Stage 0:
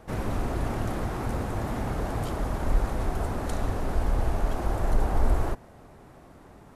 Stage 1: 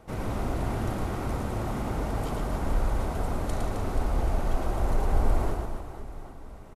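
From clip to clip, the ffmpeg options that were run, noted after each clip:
-af "bandreject=f=1.7k:w=12,aecho=1:1:110|264|479.6|781.4|1204:0.631|0.398|0.251|0.158|0.1,volume=-2.5dB"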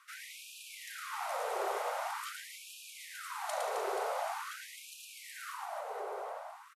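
-filter_complex "[0:a]asplit=2[a][b];[b]adelay=874.6,volume=-7dB,highshelf=f=4k:g=-19.7[c];[a][c]amix=inputs=2:normalize=0,afftfilt=real='re*gte(b*sr/1024,370*pow(2400/370,0.5+0.5*sin(2*PI*0.45*pts/sr)))':imag='im*gte(b*sr/1024,370*pow(2400/370,0.5+0.5*sin(2*PI*0.45*pts/sr)))':win_size=1024:overlap=0.75,volume=1dB"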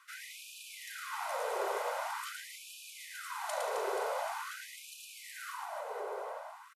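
-af "aecho=1:1:2:0.32"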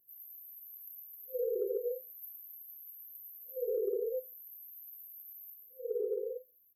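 -af "afftfilt=real='re*(1-between(b*sr/4096,520,12000))':imag='im*(1-between(b*sr/4096,520,12000))':win_size=4096:overlap=0.75,acompressor=threshold=-43dB:ratio=6,volume=12.5dB"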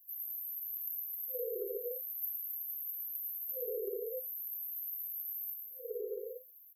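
-af "crystalizer=i=3:c=0,volume=-5.5dB"

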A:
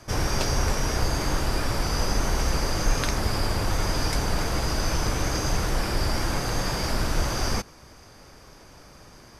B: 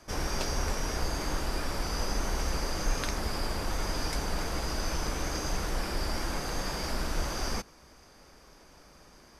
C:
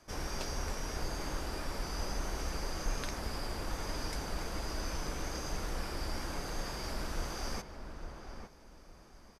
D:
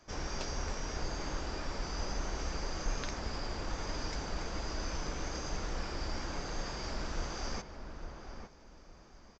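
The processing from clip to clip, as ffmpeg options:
-af "equalizer=f=110:w=3.7:g=-14,volume=-6dB"
-filter_complex "[0:a]asplit=2[a][b];[b]adelay=857,lowpass=f=1.7k:p=1,volume=-7dB,asplit=2[c][d];[d]adelay=857,lowpass=f=1.7k:p=1,volume=0.26,asplit=2[e][f];[f]adelay=857,lowpass=f=1.7k:p=1,volume=0.26[g];[a][c][e][g]amix=inputs=4:normalize=0,volume=-6.5dB"
-af "aresample=16000,aresample=44100"

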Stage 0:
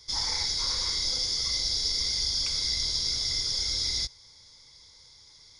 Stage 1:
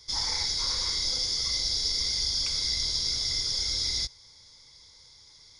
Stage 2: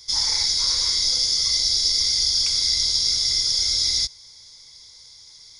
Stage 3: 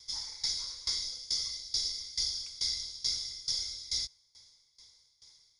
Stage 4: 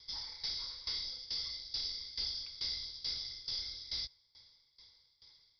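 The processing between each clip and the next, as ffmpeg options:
-af anull
-af "highshelf=f=3.2k:g=11"
-af "aeval=exprs='val(0)*pow(10,-20*if(lt(mod(2.3*n/s,1),2*abs(2.3)/1000),1-mod(2.3*n/s,1)/(2*abs(2.3)/1000),(mod(2.3*n/s,1)-2*abs(2.3)/1000)/(1-2*abs(2.3)/1000))/20)':c=same,volume=-8dB"
-af "asoftclip=type=tanh:threshold=-29dB,aresample=11025,aresample=44100"

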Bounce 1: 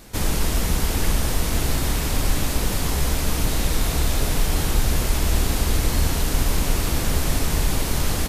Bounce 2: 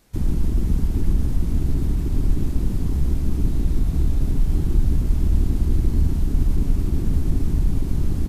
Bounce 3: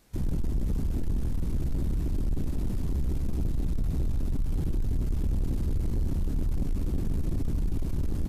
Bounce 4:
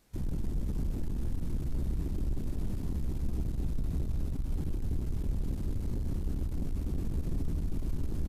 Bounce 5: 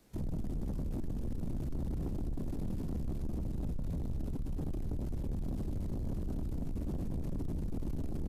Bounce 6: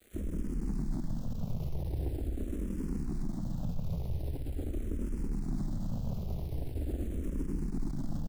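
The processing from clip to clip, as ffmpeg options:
-filter_complex "[0:a]afwtdn=0.112,acrossover=split=1200[a][b];[b]alimiter=level_in=19dB:limit=-24dB:level=0:latency=1,volume=-19dB[c];[a][c]amix=inputs=2:normalize=0,volume=2.5dB"
-af "asoftclip=type=tanh:threshold=-19.5dB,volume=-3dB"
-af "aecho=1:1:247:0.473,volume=-5dB"
-filter_complex "[0:a]acrossover=split=130|590[a][b][c];[b]acontrast=52[d];[a][d][c]amix=inputs=3:normalize=0,alimiter=level_in=0.5dB:limit=-24dB:level=0:latency=1:release=28,volume=-0.5dB,asoftclip=type=tanh:threshold=-31.5dB"
-filter_complex "[0:a]acrusher=bits=9:mix=0:aa=0.000001,aecho=1:1:135:0.335,asplit=2[a][b];[b]afreqshift=-0.43[c];[a][c]amix=inputs=2:normalize=1,volume=4dB"

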